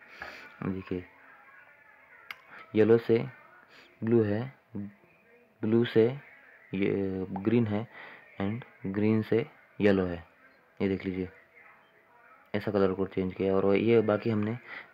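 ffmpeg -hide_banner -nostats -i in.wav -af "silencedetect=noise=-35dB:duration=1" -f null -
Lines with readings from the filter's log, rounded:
silence_start: 1.00
silence_end: 2.31 | silence_duration: 1.30
silence_start: 11.26
silence_end: 12.54 | silence_duration: 1.28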